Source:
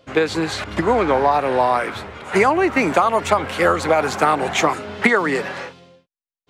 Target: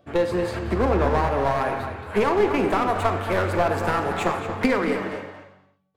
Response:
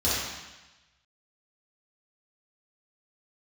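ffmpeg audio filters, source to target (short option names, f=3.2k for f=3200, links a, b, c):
-filter_complex "[0:a]equalizer=f=4.9k:w=0.63:g=-14,aeval=exprs='clip(val(0),-1,0.119)':c=same,asplit=2[a][b];[b]adelay=250.7,volume=-9dB,highshelf=f=4k:g=-5.64[c];[a][c]amix=inputs=2:normalize=0,asplit=2[d][e];[1:a]atrim=start_sample=2205,afade=t=out:st=0.41:d=0.01,atrim=end_sample=18522[f];[e][f]afir=irnorm=-1:irlink=0,volume=-18.5dB[g];[d][g]amix=inputs=2:normalize=0,asetrate=48000,aresample=44100,volume=-4dB"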